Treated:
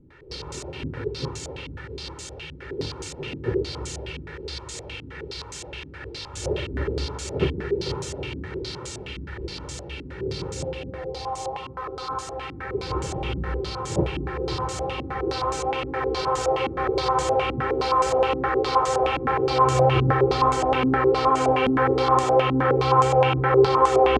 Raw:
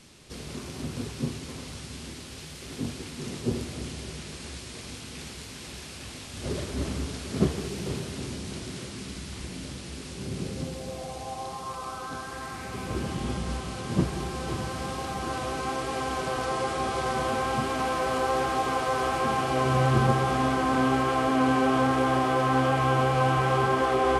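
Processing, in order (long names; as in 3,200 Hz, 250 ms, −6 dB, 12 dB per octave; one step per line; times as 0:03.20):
comb filter 2.2 ms, depth 81%
low-pass on a step sequencer 9.6 Hz 260–7,200 Hz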